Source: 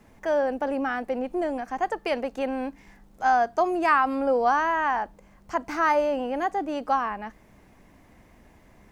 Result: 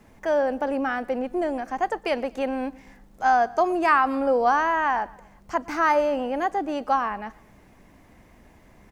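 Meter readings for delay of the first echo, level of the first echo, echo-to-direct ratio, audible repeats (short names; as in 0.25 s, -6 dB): 0.119 s, -23.0 dB, -22.0 dB, 2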